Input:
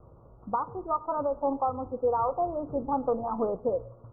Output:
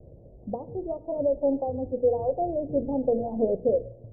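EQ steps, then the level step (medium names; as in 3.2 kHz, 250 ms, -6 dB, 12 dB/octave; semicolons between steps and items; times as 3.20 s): steep low-pass 660 Hz 48 dB/octave; hum notches 60/120/180/240/300/360/420/480 Hz; +5.5 dB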